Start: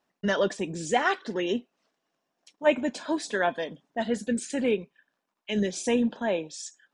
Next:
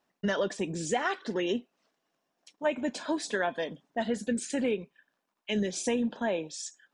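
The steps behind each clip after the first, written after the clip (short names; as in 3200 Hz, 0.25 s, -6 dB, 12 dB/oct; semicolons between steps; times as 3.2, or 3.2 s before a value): compressor 5:1, threshold -25 dBFS, peak gain reduction 9 dB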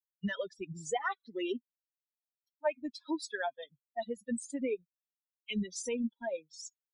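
per-bin expansion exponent 3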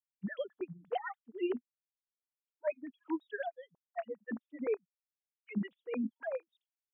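sine-wave speech; gain -2 dB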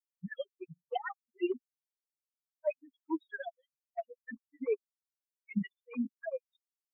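per-bin expansion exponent 3; gain +4.5 dB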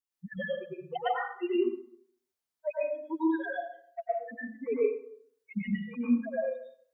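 plate-style reverb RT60 0.61 s, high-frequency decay 0.65×, pre-delay 90 ms, DRR -7.5 dB; gain -1.5 dB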